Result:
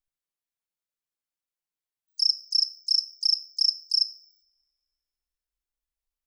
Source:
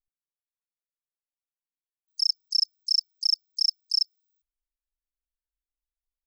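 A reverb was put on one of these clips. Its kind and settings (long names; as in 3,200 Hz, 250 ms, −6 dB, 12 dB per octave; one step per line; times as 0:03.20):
coupled-rooms reverb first 0.48 s, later 1.7 s, from −26 dB, DRR 11.5 dB
level +1 dB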